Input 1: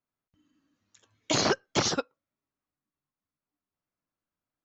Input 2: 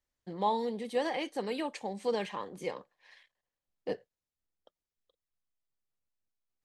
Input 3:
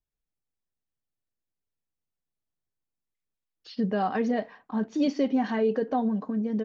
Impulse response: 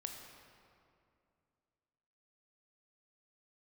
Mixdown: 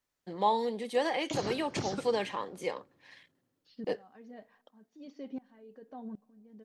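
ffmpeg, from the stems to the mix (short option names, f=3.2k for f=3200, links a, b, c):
-filter_complex "[0:a]acrossover=split=410[a][b];[b]acompressor=threshold=-34dB:ratio=6[c];[a][c]amix=inputs=2:normalize=0,volume=-2.5dB,asplit=2[d][e];[e]volume=-7dB[f];[1:a]lowshelf=f=160:g=-11,volume=3dB,asplit=2[g][h];[2:a]aeval=exprs='val(0)*pow(10,-24*if(lt(mod(-1.3*n/s,1),2*abs(-1.3)/1000),1-mod(-1.3*n/s,1)/(2*abs(-1.3)/1000),(mod(-1.3*n/s,1)-2*abs(-1.3)/1000)/(1-2*abs(-1.3)/1000))/20)':c=same,volume=-14dB,asplit=2[i][j];[j]volume=-22.5dB[k];[h]apad=whole_len=204672[l];[d][l]sidechaincompress=threshold=-37dB:ratio=8:attack=16:release=535[m];[3:a]atrim=start_sample=2205[n];[f][k]amix=inputs=2:normalize=0[o];[o][n]afir=irnorm=-1:irlink=0[p];[m][g][i][p]amix=inputs=4:normalize=0"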